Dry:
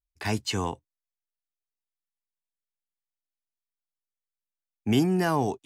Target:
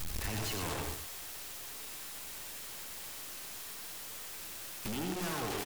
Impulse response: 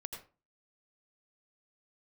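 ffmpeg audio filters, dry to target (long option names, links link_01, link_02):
-filter_complex "[0:a]aeval=exprs='val(0)+0.5*0.0447*sgn(val(0))':channel_layout=same,aecho=1:1:122:0.335,aeval=exprs='(tanh(35.5*val(0)+0.6)-tanh(0.6))/35.5':channel_layout=same,aeval=exprs='(mod(56.2*val(0)+1,2)-1)/56.2':channel_layout=same[link_01];[1:a]atrim=start_sample=2205,atrim=end_sample=4410,asetrate=41454,aresample=44100[link_02];[link_01][link_02]afir=irnorm=-1:irlink=0,volume=7dB"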